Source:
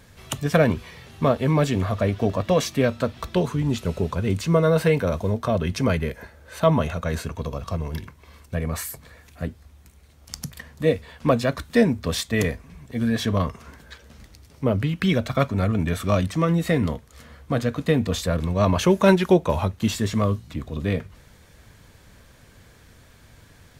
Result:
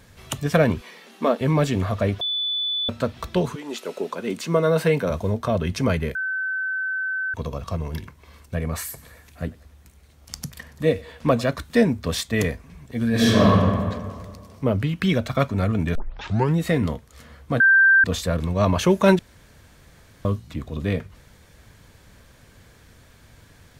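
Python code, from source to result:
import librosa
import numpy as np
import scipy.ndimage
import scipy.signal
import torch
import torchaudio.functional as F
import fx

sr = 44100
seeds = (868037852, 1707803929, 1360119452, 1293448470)

y = fx.brickwall_highpass(x, sr, low_hz=180.0, at=(0.81, 1.41))
y = fx.highpass(y, sr, hz=fx.line((3.54, 390.0), (5.09, 120.0)), slope=24, at=(3.54, 5.09), fade=0.02)
y = fx.echo_thinned(y, sr, ms=95, feedback_pct=60, hz=430.0, wet_db=-20.0, at=(8.76, 11.51))
y = fx.reverb_throw(y, sr, start_s=13.09, length_s=0.41, rt60_s=1.8, drr_db=-8.5)
y = fx.edit(y, sr, fx.bleep(start_s=2.21, length_s=0.68, hz=3480.0, db=-22.0),
    fx.bleep(start_s=6.15, length_s=1.19, hz=1530.0, db=-23.0),
    fx.tape_start(start_s=15.95, length_s=0.61),
    fx.bleep(start_s=17.6, length_s=0.44, hz=1570.0, db=-11.0),
    fx.room_tone_fill(start_s=19.19, length_s=1.06), tone=tone)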